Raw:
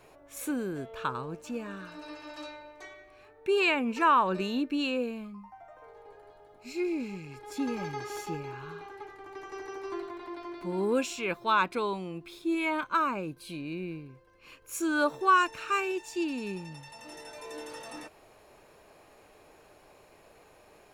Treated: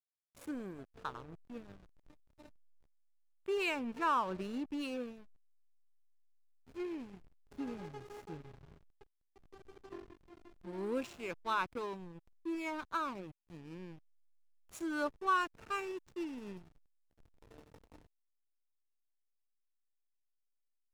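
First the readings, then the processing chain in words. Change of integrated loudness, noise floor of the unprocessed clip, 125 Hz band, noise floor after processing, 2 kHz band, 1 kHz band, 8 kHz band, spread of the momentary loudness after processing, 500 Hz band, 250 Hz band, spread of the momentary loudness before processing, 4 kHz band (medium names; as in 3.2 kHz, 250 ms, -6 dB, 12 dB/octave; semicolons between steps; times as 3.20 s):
-8.5 dB, -58 dBFS, -10.5 dB, -81 dBFS, -10.0 dB, -9.5 dB, -14.0 dB, 19 LU, -9.5 dB, -9.5 dB, 20 LU, -10.5 dB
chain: hysteresis with a dead band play -30.5 dBFS; trim -8.5 dB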